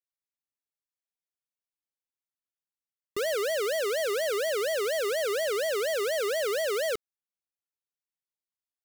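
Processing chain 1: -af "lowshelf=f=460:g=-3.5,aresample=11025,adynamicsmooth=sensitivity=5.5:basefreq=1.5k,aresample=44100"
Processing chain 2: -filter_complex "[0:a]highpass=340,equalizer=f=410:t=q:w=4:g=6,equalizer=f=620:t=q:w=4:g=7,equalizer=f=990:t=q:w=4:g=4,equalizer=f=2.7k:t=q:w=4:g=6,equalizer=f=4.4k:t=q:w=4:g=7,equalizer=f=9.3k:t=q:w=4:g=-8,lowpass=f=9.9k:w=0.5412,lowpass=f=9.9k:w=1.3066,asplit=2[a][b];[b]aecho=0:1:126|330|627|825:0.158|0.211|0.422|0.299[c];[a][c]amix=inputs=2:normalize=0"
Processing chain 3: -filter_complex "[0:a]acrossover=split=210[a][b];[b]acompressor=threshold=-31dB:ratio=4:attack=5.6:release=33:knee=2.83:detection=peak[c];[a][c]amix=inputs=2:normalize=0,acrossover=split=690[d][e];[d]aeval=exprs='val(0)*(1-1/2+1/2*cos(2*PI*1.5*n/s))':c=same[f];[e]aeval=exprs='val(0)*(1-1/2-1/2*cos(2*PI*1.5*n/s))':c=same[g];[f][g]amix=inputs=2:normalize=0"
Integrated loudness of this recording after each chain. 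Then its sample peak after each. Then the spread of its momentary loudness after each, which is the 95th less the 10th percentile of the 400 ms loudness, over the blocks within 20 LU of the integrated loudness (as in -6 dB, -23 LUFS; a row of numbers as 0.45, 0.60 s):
-31.0, -23.5, -37.0 LUFS; -27.5, -11.5, -26.5 dBFS; 2, 8, 2 LU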